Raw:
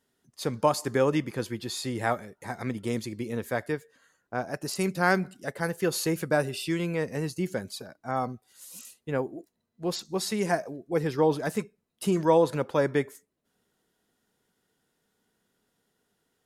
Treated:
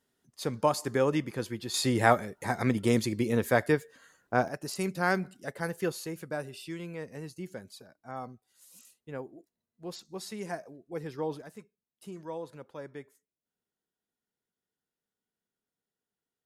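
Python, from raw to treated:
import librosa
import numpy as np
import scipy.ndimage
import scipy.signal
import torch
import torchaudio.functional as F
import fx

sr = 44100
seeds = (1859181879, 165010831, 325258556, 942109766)

y = fx.gain(x, sr, db=fx.steps((0.0, -2.5), (1.74, 5.0), (4.48, -4.0), (5.92, -10.5), (11.42, -18.0)))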